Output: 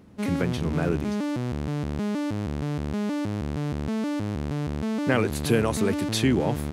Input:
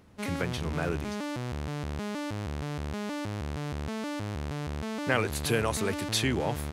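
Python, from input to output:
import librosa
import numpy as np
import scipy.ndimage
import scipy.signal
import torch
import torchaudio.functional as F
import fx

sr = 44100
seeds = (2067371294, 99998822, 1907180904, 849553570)

y = fx.peak_eq(x, sr, hz=230.0, db=9.0, octaves=2.2)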